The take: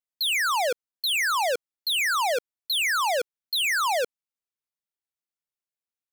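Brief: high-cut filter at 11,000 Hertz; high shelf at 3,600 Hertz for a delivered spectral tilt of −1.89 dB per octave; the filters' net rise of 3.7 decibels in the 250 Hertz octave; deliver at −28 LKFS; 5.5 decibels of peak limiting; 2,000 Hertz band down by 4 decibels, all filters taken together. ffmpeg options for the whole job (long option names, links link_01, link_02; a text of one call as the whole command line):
ffmpeg -i in.wav -af "lowpass=11000,equalizer=frequency=250:width_type=o:gain=5.5,equalizer=frequency=2000:width_type=o:gain=-6.5,highshelf=frequency=3600:gain=4,volume=1dB,alimiter=limit=-24dB:level=0:latency=1" out.wav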